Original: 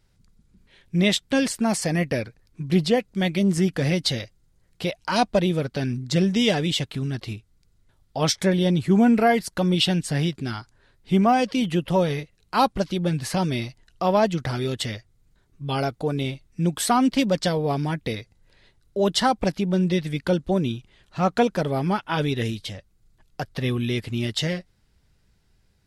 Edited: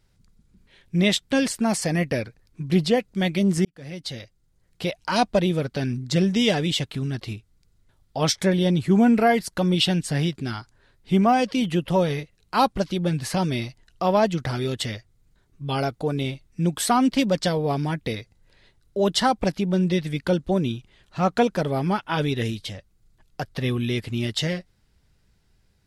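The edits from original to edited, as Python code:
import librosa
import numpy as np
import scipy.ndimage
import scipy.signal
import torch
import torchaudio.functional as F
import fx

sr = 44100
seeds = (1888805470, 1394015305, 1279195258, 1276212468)

y = fx.edit(x, sr, fx.fade_in_span(start_s=3.65, length_s=1.24), tone=tone)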